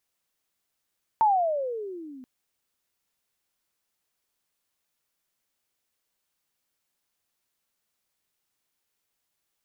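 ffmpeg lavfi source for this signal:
-f lavfi -i "aevalsrc='pow(10,(-16-25.5*t/1.03)/20)*sin(2*PI*907*1.03/(-22.5*log(2)/12)*(exp(-22.5*log(2)/12*t/1.03)-1))':d=1.03:s=44100"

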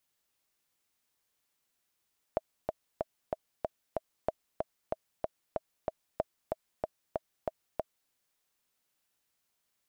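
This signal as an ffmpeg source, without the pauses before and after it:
-f lavfi -i "aevalsrc='pow(10,(-15-3*gte(mod(t,6*60/188),60/188))/20)*sin(2*PI*638*mod(t,60/188))*exp(-6.91*mod(t,60/188)/0.03)':d=5.74:s=44100"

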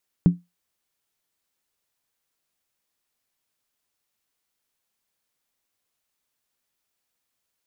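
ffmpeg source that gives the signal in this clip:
-f lavfi -i "aevalsrc='0.422*pow(10,-3*t/0.2)*sin(2*PI*175*t)+0.106*pow(10,-3*t/0.158)*sin(2*PI*278.9*t)+0.0266*pow(10,-3*t/0.137)*sin(2*PI*373.8*t)+0.00668*pow(10,-3*t/0.132)*sin(2*PI*401.8*t)+0.00168*pow(10,-3*t/0.123)*sin(2*PI*464.3*t)':d=0.63:s=44100"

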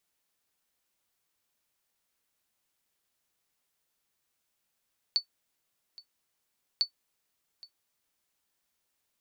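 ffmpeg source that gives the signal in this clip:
-f lavfi -i "aevalsrc='0.15*(sin(2*PI*4480*mod(t,1.65))*exp(-6.91*mod(t,1.65)/0.1)+0.0794*sin(2*PI*4480*max(mod(t,1.65)-0.82,0))*exp(-6.91*max(mod(t,1.65)-0.82,0)/0.1))':d=3.3:s=44100"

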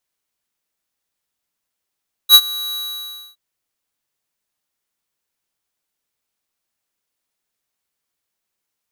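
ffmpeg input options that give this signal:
-f lavfi -i "aevalsrc='0.631*(2*lt(mod(3900*t,1),0.5)-1)':d=1.067:s=44100,afade=t=in:d=0.058,afade=t=out:st=0.058:d=0.055:silence=0.0891,afade=t=out:st=0.45:d=0.617"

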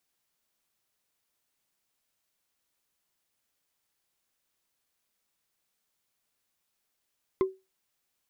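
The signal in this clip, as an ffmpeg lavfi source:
-f lavfi -i "aevalsrc='0.126*pow(10,-3*t/0.24)*sin(2*PI*380*t)+0.0447*pow(10,-3*t/0.071)*sin(2*PI*1047.7*t)+0.0158*pow(10,-3*t/0.032)*sin(2*PI*2053.5*t)+0.00562*pow(10,-3*t/0.017)*sin(2*PI*3394.5*t)+0.002*pow(10,-3*t/0.011)*sin(2*PI*5069.2*t)':d=0.45:s=44100"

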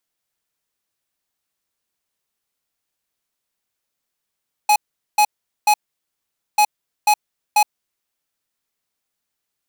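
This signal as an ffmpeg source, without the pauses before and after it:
-f lavfi -i "aevalsrc='0.224*(2*lt(mod(840*t,1),0.5)-1)*clip(min(mod(mod(t,1.89),0.49),0.07-mod(mod(t,1.89),0.49))/0.005,0,1)*lt(mod(t,1.89),1.47)':d=3.78:s=44100"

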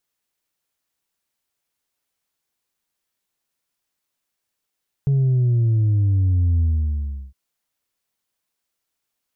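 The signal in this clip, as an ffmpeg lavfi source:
-f lavfi -i "aevalsrc='0.178*clip((2.26-t)/0.72,0,1)*tanh(1.26*sin(2*PI*140*2.26/log(65/140)*(exp(log(65/140)*t/2.26)-1)))/tanh(1.26)':d=2.26:s=44100"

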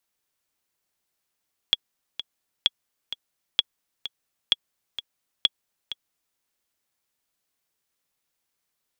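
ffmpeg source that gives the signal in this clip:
-f lavfi -i "aevalsrc='pow(10,(-5-13*gte(mod(t,2*60/129),60/129))/20)*sin(2*PI*3350*mod(t,60/129))*exp(-6.91*mod(t,60/129)/0.03)':d=4.65:s=44100"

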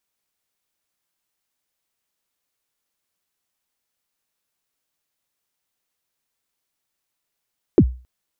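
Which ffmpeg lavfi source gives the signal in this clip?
-f lavfi -i "aevalsrc='0.596*pow(10,-3*t/0.35)*sin(2*PI*(440*0.062/log(62/440)*(exp(log(62/440)*min(t,0.062)/0.062)-1)+62*max(t-0.062,0)))':d=0.27:s=44100"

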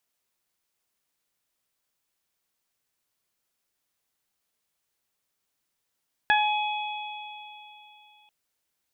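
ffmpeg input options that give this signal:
-f lavfi -i "aevalsrc='0.1*pow(10,-3*t/2.93)*sin(2*PI*843*t)+0.15*pow(10,-3*t/0.27)*sin(2*PI*1686*t)+0.0501*pow(10,-3*t/3.29)*sin(2*PI*2529*t)+0.0355*pow(10,-3*t/3.68)*sin(2*PI*3372*t)':d=1.99:s=44100"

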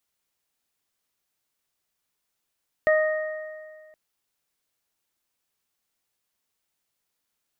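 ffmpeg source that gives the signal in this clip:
-f lavfi -i "aevalsrc='0.158*pow(10,-3*t/1.88)*sin(2*PI*621*t)+0.0316*pow(10,-3*t/1.51)*sin(2*PI*1242*t)+0.0841*pow(10,-3*t/1.75)*sin(2*PI*1863*t)':d=1.07:s=44100"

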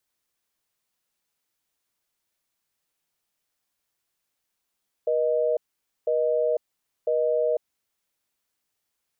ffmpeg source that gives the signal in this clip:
-f lavfi -i "aevalsrc='0.0708*(sin(2*PI*480*t)+sin(2*PI*620*t))*clip(min(mod(t,1),0.5-mod(t,1))/0.005,0,1)':d=2.68:s=44100"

